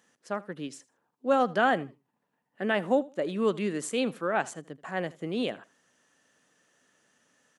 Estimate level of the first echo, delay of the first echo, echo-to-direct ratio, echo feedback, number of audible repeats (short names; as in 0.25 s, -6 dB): -21.0 dB, 80 ms, -21.0 dB, 21%, 2